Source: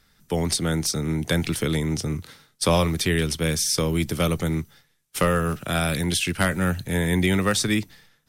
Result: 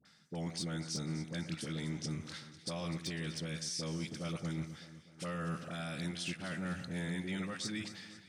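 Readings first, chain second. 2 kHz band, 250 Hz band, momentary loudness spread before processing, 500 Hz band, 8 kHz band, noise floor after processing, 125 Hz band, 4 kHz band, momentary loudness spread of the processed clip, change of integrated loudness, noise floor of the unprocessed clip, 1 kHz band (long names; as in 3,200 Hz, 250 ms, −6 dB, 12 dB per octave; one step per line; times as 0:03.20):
−16.5 dB, −14.5 dB, 7 LU, −19.5 dB, −17.5 dB, −60 dBFS, −15.5 dB, −14.5 dB, 5 LU, −16.0 dB, −65 dBFS, −18.5 dB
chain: reversed playback
downward compressor 6 to 1, threshold −35 dBFS, peak gain reduction 18.5 dB
reversed playback
brickwall limiter −30 dBFS, peak gain reduction 5.5 dB
loudspeaker in its box 160–8,500 Hz, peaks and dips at 170 Hz +4 dB, 420 Hz −7 dB, 980 Hz −4 dB, 4,800 Hz +4 dB
all-pass dispersion highs, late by 53 ms, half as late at 880 Hz
on a send: delay that swaps between a low-pass and a high-pass 125 ms, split 1,900 Hz, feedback 72%, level −11 dB
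on the sum: wave folding −28.5 dBFS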